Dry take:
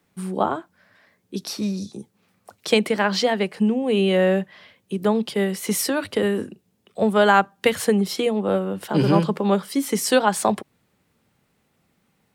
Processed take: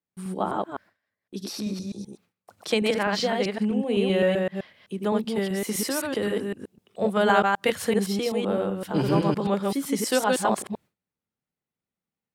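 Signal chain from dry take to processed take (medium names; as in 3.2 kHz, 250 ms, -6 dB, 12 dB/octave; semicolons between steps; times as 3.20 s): chunks repeated in reverse 128 ms, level -1.5 dB; gate with hold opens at -41 dBFS; trim -6 dB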